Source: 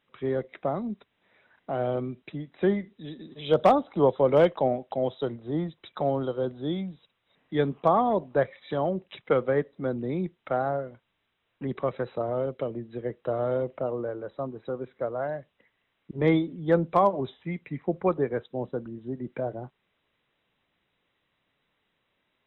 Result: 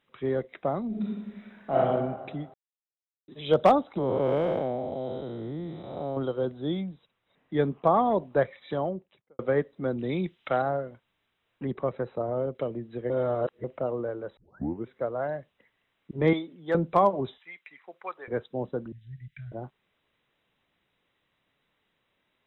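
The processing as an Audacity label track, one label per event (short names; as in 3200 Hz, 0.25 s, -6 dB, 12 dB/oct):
0.880000	1.770000	reverb throw, RT60 1.5 s, DRR -7 dB
2.540000	3.280000	mute
3.980000	6.170000	time blur width 0.319 s
6.840000	7.940000	high shelf 3200 Hz -8.5 dB
8.580000	9.390000	studio fade out
9.980000	10.620000	bell 3300 Hz +11 dB 1.6 oct
11.710000	12.550000	high shelf 2000 Hz -10.5 dB
13.100000	13.640000	reverse
14.370000	14.370000	tape start 0.51 s
16.330000	16.750000	HPF 750 Hz 6 dB/oct
17.380000	18.280000	HPF 1300 Hz
18.920000	19.520000	elliptic band-stop 140–1900 Hz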